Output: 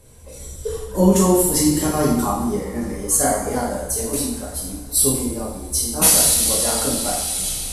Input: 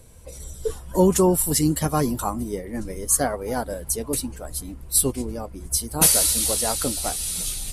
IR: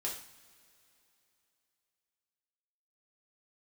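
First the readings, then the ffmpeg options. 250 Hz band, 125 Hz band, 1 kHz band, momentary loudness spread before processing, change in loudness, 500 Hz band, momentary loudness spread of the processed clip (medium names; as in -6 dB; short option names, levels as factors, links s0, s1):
+5.0 dB, +2.5 dB, +3.5 dB, 15 LU, +4.0 dB, +3.0 dB, 14 LU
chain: -filter_complex "[1:a]atrim=start_sample=2205,asetrate=26019,aresample=44100[s0];[0:a][s0]afir=irnorm=-1:irlink=0,volume=0.841"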